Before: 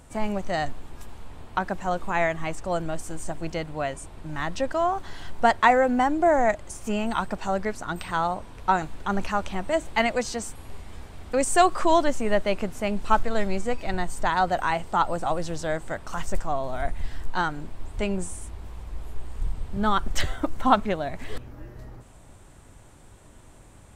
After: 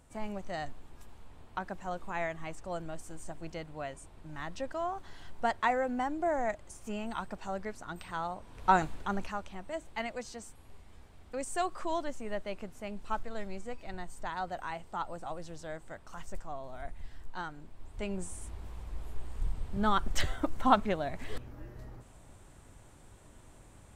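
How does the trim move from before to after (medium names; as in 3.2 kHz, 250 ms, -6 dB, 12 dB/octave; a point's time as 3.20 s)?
8.40 s -11 dB
8.77 s -1 dB
9.48 s -14 dB
17.68 s -14 dB
18.51 s -5 dB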